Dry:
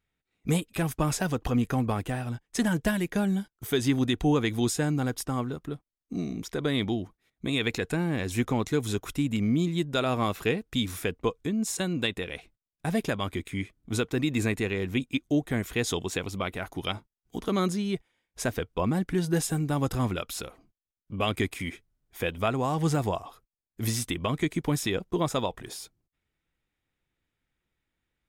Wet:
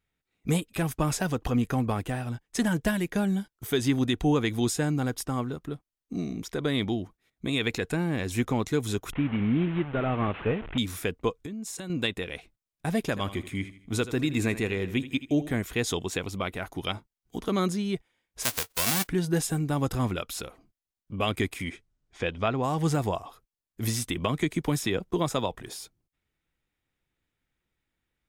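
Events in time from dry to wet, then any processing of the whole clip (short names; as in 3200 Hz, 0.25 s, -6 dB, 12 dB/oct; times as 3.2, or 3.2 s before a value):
9.11–10.78 delta modulation 16 kbps, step -33.5 dBFS
11.38–11.9 compressor 12:1, threshold -33 dBFS
13–15.57 feedback echo 80 ms, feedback 41%, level -14.5 dB
18.42–19.07 spectral whitening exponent 0.1
21.64–22.62 LPF 11000 Hz -> 4700 Hz 24 dB/oct
24.16–25.55 three-band squash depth 40%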